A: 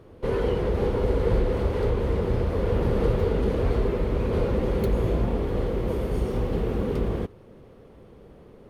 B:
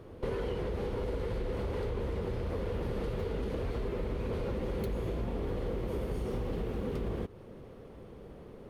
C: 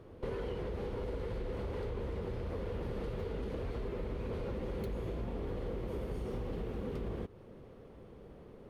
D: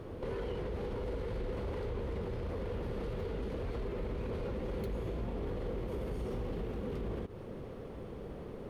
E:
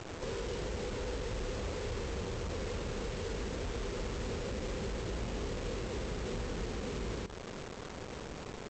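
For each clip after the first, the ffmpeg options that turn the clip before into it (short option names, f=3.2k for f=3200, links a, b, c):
-filter_complex "[0:a]acrossover=split=1800[a][b];[a]alimiter=limit=-20dB:level=0:latency=1[c];[c][b]amix=inputs=2:normalize=0,acompressor=threshold=-31dB:ratio=6"
-af "highshelf=f=6.5k:g=-4,volume=-4dB"
-af "alimiter=level_in=15dB:limit=-24dB:level=0:latency=1:release=65,volume=-15dB,volume=8.5dB"
-af "aresample=16000,acrusher=bits=6:mix=0:aa=0.000001,aresample=44100,aecho=1:1:233:0.211,volume=-1dB"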